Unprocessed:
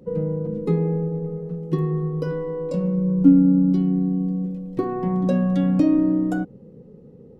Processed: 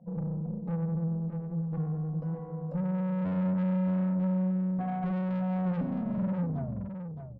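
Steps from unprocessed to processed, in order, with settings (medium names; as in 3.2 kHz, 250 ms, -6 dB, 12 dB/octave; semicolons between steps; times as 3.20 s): tape stop on the ending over 1.75 s; two resonant band-passes 360 Hz, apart 2 oct; flange 0.65 Hz, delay 9.2 ms, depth 7.4 ms, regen -79%; valve stage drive 38 dB, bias 0.25; bass shelf 450 Hz +3.5 dB; delay 616 ms -8 dB; trim +6 dB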